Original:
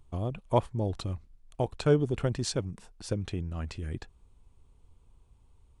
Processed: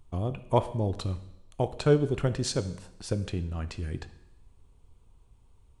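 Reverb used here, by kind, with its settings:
coupled-rooms reverb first 0.85 s, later 2.2 s, from −25 dB, DRR 11 dB
level +1.5 dB

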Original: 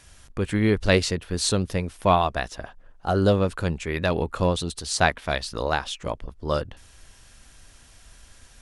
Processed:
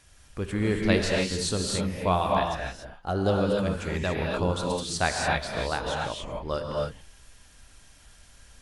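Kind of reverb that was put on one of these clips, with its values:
reverb whose tail is shaped and stops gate 310 ms rising, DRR −1 dB
level −6 dB

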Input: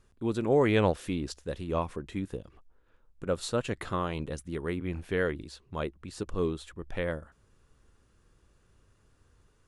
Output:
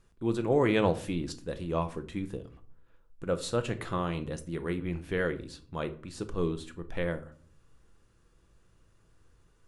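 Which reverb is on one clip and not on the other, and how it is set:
rectangular room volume 440 cubic metres, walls furnished, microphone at 0.72 metres
level −1 dB

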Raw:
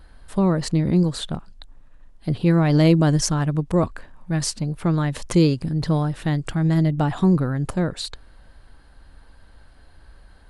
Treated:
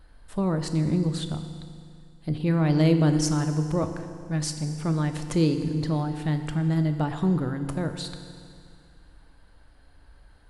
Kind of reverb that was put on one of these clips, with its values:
feedback delay network reverb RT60 2.3 s, low-frequency decay 1×, high-frequency decay 0.95×, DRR 7 dB
level −6 dB

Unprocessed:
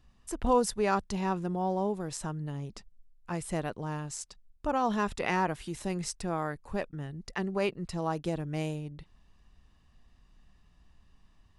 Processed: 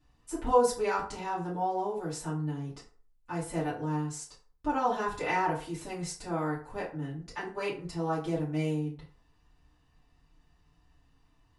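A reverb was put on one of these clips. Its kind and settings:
feedback delay network reverb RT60 0.44 s, low-frequency decay 0.7×, high-frequency decay 0.6×, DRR −9 dB
level −9.5 dB

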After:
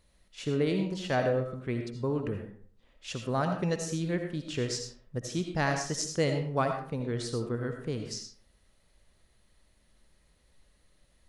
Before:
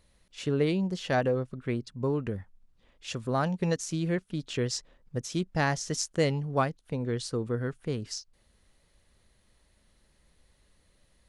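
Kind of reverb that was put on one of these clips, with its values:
comb and all-pass reverb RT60 0.51 s, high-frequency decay 0.65×, pre-delay 40 ms, DRR 4.5 dB
level −2 dB

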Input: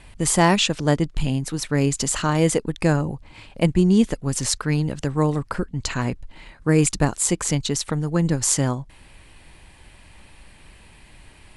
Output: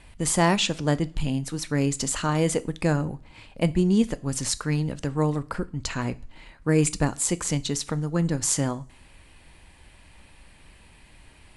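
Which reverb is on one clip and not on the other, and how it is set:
coupled-rooms reverb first 0.38 s, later 1.6 s, from −26 dB, DRR 13.5 dB
level −4 dB

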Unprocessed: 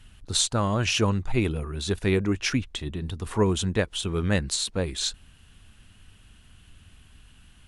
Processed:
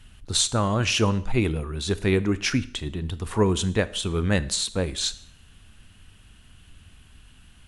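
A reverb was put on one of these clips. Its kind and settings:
four-comb reverb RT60 0.6 s, combs from 25 ms, DRR 15.5 dB
level +1.5 dB

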